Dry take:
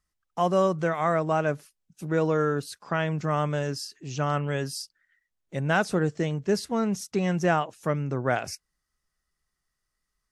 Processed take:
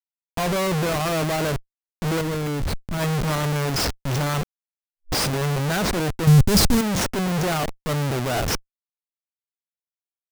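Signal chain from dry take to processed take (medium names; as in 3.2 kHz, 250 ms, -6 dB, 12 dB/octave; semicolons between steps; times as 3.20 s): Schmitt trigger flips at -36 dBFS; 2.21–2.98 s: bass shelf 170 Hz +11 dB; peak limiter -26.5 dBFS, peak gain reduction 21.5 dB; 4.41–5.56 s: reverse; 6.27–6.81 s: tone controls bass +14 dB, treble +8 dB; trim +6 dB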